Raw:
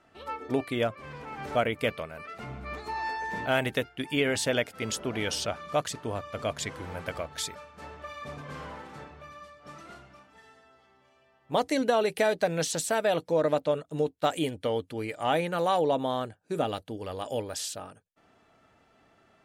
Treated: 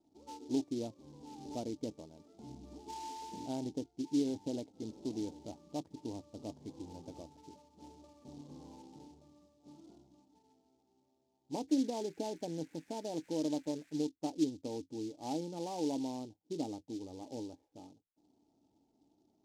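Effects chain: cascade formant filter u; 11.68–14.01 s: band noise 1.5–2.6 kHz -71 dBFS; delay time shaken by noise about 4.7 kHz, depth 0.054 ms; trim +1 dB

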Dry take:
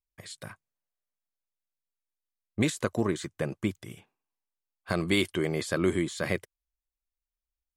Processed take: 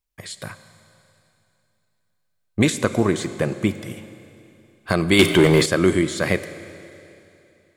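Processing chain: Schroeder reverb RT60 2.9 s, combs from 32 ms, DRR 12 dB; 5.19–5.66 s: waveshaping leveller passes 2; trim +8.5 dB

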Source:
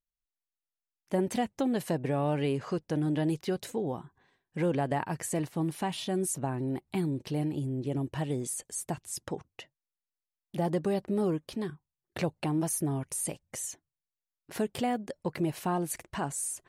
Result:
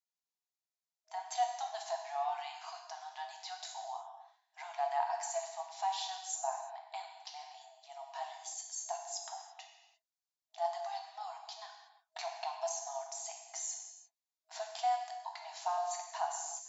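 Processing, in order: high-order bell 1.9 kHz -9.5 dB; gated-style reverb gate 370 ms falling, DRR 1.5 dB; FFT band-pass 640–7600 Hz

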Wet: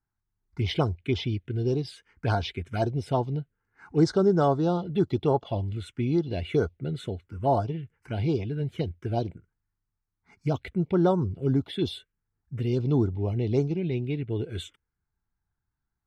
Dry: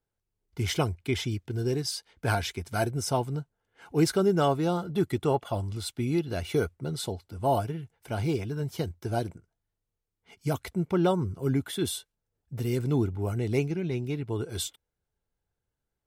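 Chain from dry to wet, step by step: low-pass 4.3 kHz 12 dB/octave; touch-sensitive phaser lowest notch 520 Hz, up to 2.6 kHz, full sweep at -21.5 dBFS; trim +2.5 dB

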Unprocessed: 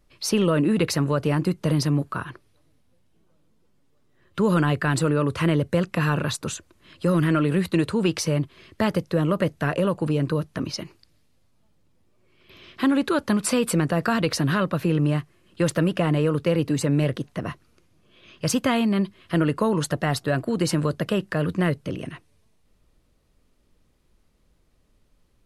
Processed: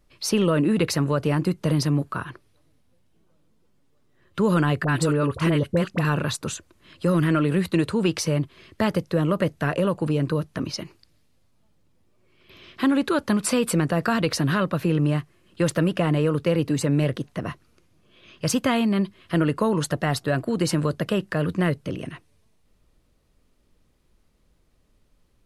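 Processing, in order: 4.84–6.05 s: phase dispersion highs, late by 44 ms, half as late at 910 Hz

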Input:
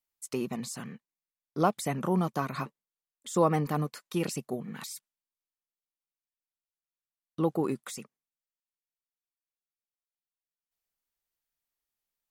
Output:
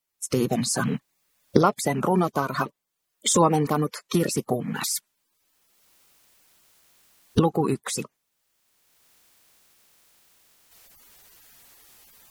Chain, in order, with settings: coarse spectral quantiser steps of 30 dB; recorder AGC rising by 20 dB/s; trim +5.5 dB

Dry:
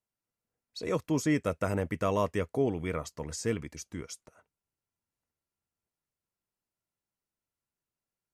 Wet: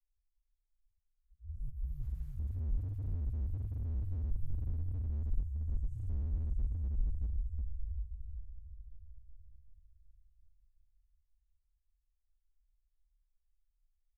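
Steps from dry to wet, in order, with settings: spectral sustain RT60 2.98 s; level-controlled noise filter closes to 1.4 kHz, open at -21 dBFS; inverse Chebyshev band-stop 240–4400 Hz, stop band 70 dB; de-hum 107 Hz, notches 18; peak limiter -47.5 dBFS, peak gain reduction 5.5 dB; slow attack 120 ms; tilt EQ -4 dB/octave; feedback comb 69 Hz, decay 0.68 s, harmonics all, mix 50%; time stretch by phase-locked vocoder 1.7×; on a send: feedback delay 374 ms, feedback 57%, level -7.5 dB; on the sum: slew-rate limiter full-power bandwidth 0.37 Hz; trim +12 dB

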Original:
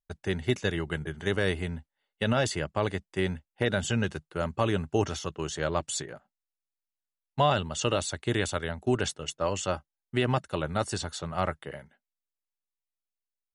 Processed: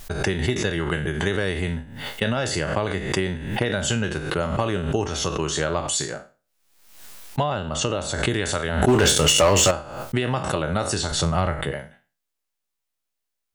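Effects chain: spectral sustain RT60 0.33 s; compression, threshold -29 dBFS, peak gain reduction 10.5 dB; 7.43–8.24 s: treble shelf 2.5 kHz -8 dB; 8.88–9.71 s: waveshaping leveller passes 3; 11.11–11.72 s: bass shelf 140 Hz +11 dB; swell ahead of each attack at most 61 dB/s; trim +9 dB

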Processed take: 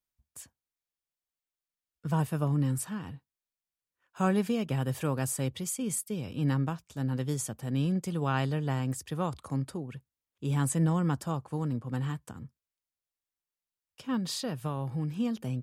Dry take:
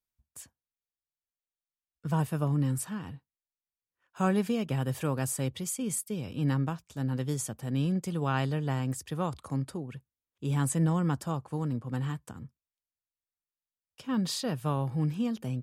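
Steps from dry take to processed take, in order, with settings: 14.16–15.17 s: compression 3:1, threshold -30 dBFS, peak gain reduction 5 dB

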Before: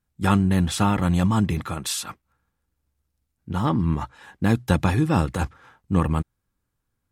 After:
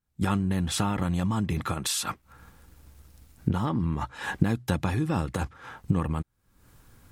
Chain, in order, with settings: recorder AGC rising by 58 dB/s; trim -7.5 dB

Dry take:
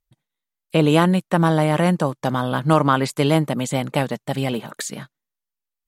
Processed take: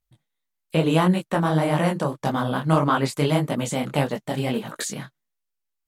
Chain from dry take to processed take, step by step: in parallel at 0 dB: compression, threshold -24 dBFS, peak gain reduction 13.5 dB; on the sum: detune thickener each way 59 cents; trim -2 dB

